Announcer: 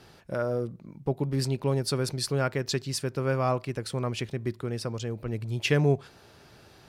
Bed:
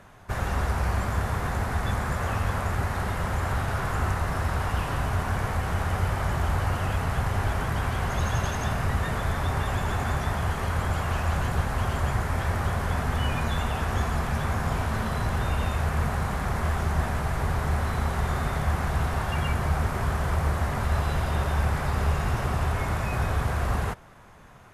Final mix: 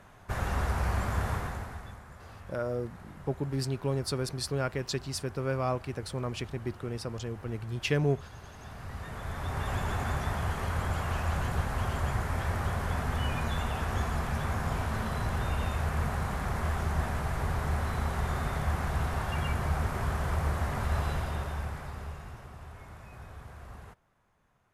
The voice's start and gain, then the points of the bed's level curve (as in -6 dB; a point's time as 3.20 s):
2.20 s, -4.0 dB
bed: 1.33 s -3.5 dB
2.03 s -21.5 dB
8.41 s -21.5 dB
9.73 s -4.5 dB
21.07 s -4.5 dB
22.50 s -20.5 dB